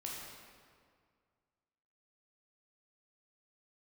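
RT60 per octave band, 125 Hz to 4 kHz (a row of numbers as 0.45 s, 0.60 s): 2.3 s, 2.1 s, 2.0 s, 2.0 s, 1.7 s, 1.4 s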